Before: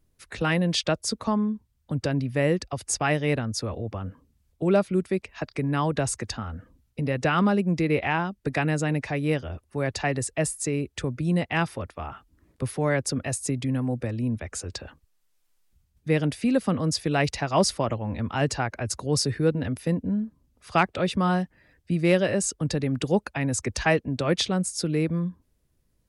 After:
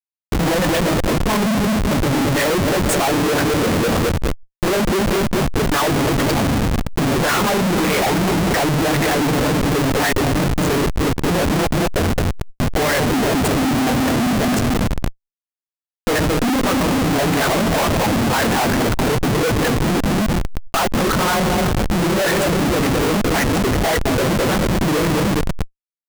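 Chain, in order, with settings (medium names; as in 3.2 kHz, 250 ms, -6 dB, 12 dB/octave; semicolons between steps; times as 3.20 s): phase randomisation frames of 50 ms; peaking EQ 3.1 kHz -14.5 dB 2.3 oct; wah-wah 1.8 Hz 220–2700 Hz, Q 2; dynamic bell 1.8 kHz, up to +3 dB, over -58 dBFS, Q 1.8; waveshaping leveller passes 5; expander -45 dBFS; touch-sensitive phaser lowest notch 310 Hz, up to 4.9 kHz, full sweep at -26.5 dBFS; two-band feedback delay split 1.3 kHz, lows 214 ms, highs 333 ms, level -14 dB; Schmitt trigger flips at -36.5 dBFS; swell ahead of each attack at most 75 dB/s; trim +7 dB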